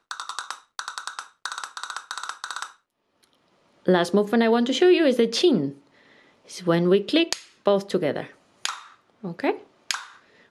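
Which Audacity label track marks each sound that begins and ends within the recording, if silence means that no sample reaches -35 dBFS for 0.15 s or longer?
0.790000	1.230000	sound
1.450000	2.670000	sound
3.870000	5.720000	sound
6.500000	7.400000	sound
7.660000	8.270000	sound
8.650000	8.820000	sound
9.240000	9.580000	sound
9.910000	10.050000	sound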